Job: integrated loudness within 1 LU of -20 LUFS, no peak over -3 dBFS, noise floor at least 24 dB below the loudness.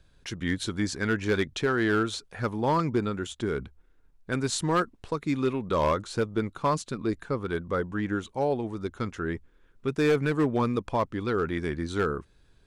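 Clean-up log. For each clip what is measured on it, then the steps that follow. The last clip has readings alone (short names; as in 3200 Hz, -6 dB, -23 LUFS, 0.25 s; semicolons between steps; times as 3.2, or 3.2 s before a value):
clipped 0.7%; flat tops at -17.5 dBFS; loudness -28.5 LUFS; peak -17.5 dBFS; loudness target -20.0 LUFS
-> clip repair -17.5 dBFS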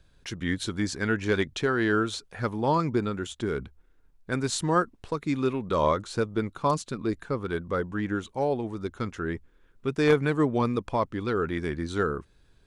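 clipped 0.0%; loudness -28.0 LUFS; peak -8.5 dBFS; loudness target -20.0 LUFS
-> gain +8 dB; limiter -3 dBFS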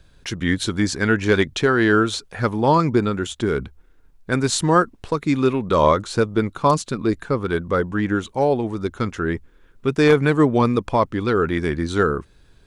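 loudness -20.5 LUFS; peak -3.0 dBFS; noise floor -53 dBFS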